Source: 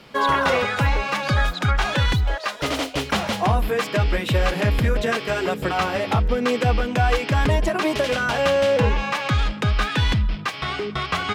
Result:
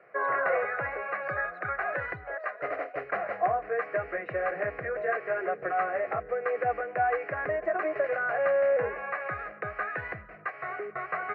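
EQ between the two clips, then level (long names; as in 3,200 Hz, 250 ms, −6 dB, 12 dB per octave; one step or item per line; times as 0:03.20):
loudspeaker in its box 260–2,200 Hz, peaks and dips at 720 Hz +9 dB, 1,000 Hz +4 dB, 1,900 Hz +4 dB
phaser with its sweep stopped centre 910 Hz, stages 6
−7.0 dB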